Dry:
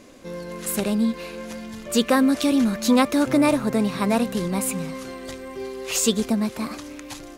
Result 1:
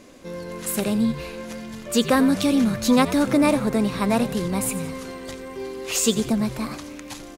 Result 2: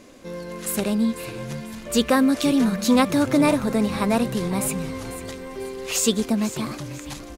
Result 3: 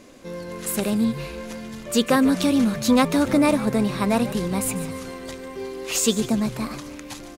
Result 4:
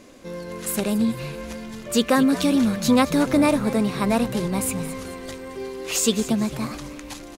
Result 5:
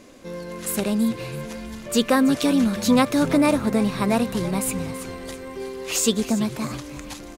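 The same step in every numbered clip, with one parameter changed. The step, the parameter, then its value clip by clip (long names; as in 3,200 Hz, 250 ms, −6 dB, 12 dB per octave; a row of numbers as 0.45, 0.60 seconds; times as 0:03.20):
echo with shifted repeats, delay time: 87, 495, 145, 219, 329 milliseconds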